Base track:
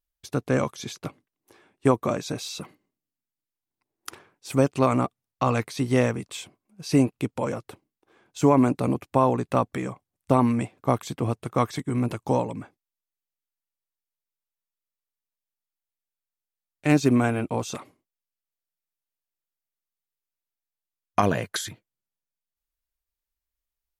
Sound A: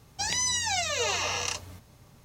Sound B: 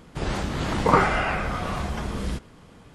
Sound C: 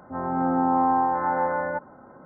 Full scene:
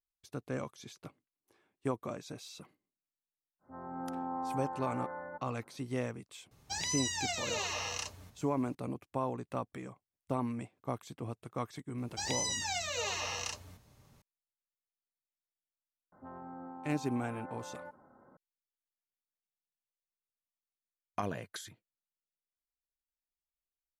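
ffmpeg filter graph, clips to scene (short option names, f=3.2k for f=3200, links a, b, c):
-filter_complex "[3:a]asplit=2[a][b];[1:a]asplit=2[c][d];[0:a]volume=-14.5dB[e];[b]acompressor=threshold=-30dB:ratio=6:attack=3.2:release=140:knee=1:detection=peak[f];[a]atrim=end=2.25,asetpts=PTS-STARTPTS,volume=-16.5dB,afade=t=in:d=0.1,afade=t=out:st=2.15:d=0.1,adelay=3590[g];[c]atrim=end=2.24,asetpts=PTS-STARTPTS,volume=-7.5dB,afade=t=in:d=0.004:c=hsin,afade=t=out:st=2.236:d=0.004:c=hsin,adelay=6510[h];[d]atrim=end=2.24,asetpts=PTS-STARTPTS,volume=-7.5dB,afade=t=in:d=0.004:c=hsin,afade=t=out:st=2.236:d=0.004:c=hsin,adelay=11980[i];[f]atrim=end=2.25,asetpts=PTS-STARTPTS,volume=-13.5dB,afade=t=in:d=0.004:c=hsin,afade=t=out:st=2.246:d=0.004:c=hsin,adelay=16120[j];[e][g][h][i][j]amix=inputs=5:normalize=0"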